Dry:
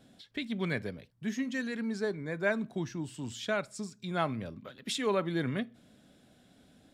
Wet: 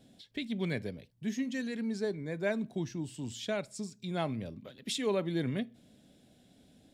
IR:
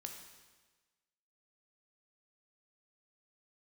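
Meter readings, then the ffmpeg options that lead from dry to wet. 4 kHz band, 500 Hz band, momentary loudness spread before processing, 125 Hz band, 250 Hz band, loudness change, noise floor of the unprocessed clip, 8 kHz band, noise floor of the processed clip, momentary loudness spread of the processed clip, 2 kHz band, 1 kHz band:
-1.0 dB, -1.0 dB, 10 LU, 0.0 dB, 0.0 dB, -1.5 dB, -63 dBFS, 0.0 dB, -64 dBFS, 10 LU, -5.5 dB, -5.5 dB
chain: -af "equalizer=f=1300:w=1.4:g=-9.5"

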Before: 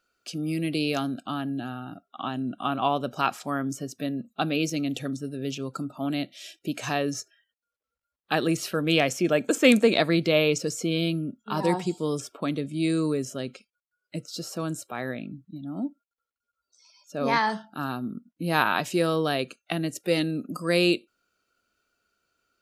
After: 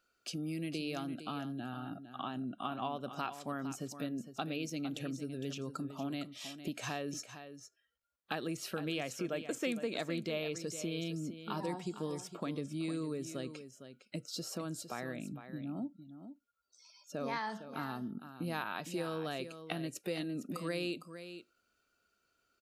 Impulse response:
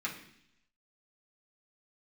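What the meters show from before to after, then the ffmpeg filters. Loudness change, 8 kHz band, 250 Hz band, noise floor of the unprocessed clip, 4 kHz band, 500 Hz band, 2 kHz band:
-13.0 dB, -9.5 dB, -12.0 dB, under -85 dBFS, -12.5 dB, -13.5 dB, -14.0 dB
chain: -af "acompressor=threshold=0.0178:ratio=3,aecho=1:1:458:0.282,volume=0.708"

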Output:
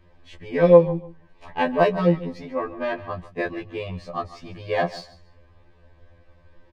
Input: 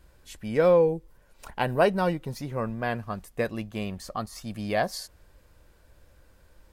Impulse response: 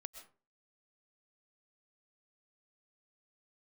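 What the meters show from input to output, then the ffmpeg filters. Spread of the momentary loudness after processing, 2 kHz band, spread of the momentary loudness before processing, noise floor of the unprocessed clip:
18 LU, +2.5 dB, 16 LU, -59 dBFS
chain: -filter_complex "[0:a]equalizer=f=12000:w=2.8:g=-12,adynamicsmooth=sensitivity=5:basefreq=5100,asuperstop=centerf=1400:order=12:qfactor=7.3,aecho=1:1:146|292:0.141|0.0297,asplit=2[s0][s1];[1:a]atrim=start_sample=2205,atrim=end_sample=3969,lowpass=4500[s2];[s1][s2]afir=irnorm=-1:irlink=0,volume=2.99[s3];[s0][s3]amix=inputs=2:normalize=0,afftfilt=real='re*2*eq(mod(b,4),0)':imag='im*2*eq(mod(b,4),0)':win_size=2048:overlap=0.75,volume=0.841"

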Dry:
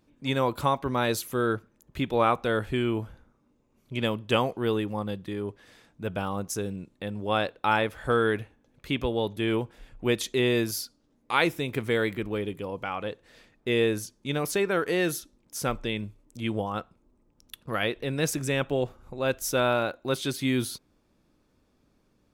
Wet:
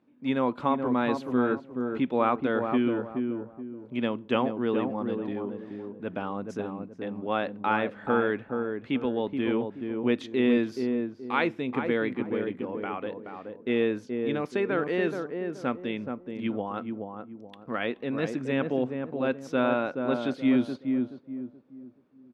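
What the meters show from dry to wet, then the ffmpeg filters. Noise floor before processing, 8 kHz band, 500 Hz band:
-68 dBFS, under -20 dB, -0.5 dB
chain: -filter_complex "[0:a]highpass=180,lowpass=2500,equalizer=f=250:w=4.8:g=9.5,asplit=2[s0][s1];[s1]adelay=426,lowpass=f=890:p=1,volume=0.631,asplit=2[s2][s3];[s3]adelay=426,lowpass=f=890:p=1,volume=0.36,asplit=2[s4][s5];[s5]adelay=426,lowpass=f=890:p=1,volume=0.36,asplit=2[s6][s7];[s7]adelay=426,lowpass=f=890:p=1,volume=0.36,asplit=2[s8][s9];[s9]adelay=426,lowpass=f=890:p=1,volume=0.36[s10];[s2][s4][s6][s8][s10]amix=inputs=5:normalize=0[s11];[s0][s11]amix=inputs=2:normalize=0,volume=0.794"

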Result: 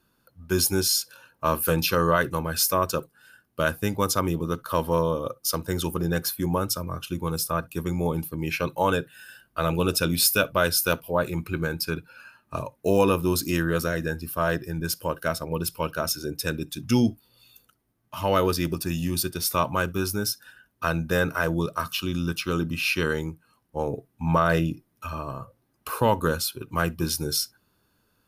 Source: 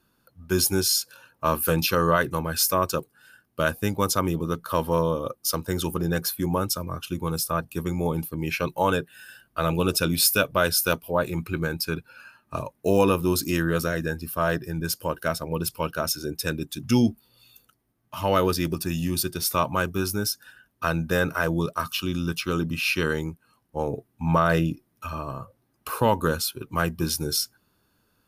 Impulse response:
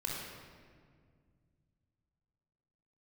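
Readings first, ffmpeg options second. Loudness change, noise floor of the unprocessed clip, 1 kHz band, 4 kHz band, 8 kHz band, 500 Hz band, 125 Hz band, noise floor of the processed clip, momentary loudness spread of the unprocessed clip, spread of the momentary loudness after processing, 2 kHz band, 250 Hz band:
-0.5 dB, -69 dBFS, -0.5 dB, -0.5 dB, -0.5 dB, 0.0 dB, -0.5 dB, -70 dBFS, 10 LU, 10 LU, 0.0 dB, -0.5 dB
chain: -filter_complex "[0:a]asplit=2[s0][s1];[1:a]atrim=start_sample=2205,atrim=end_sample=3087[s2];[s1][s2]afir=irnorm=-1:irlink=0,volume=0.106[s3];[s0][s3]amix=inputs=2:normalize=0,volume=0.891"

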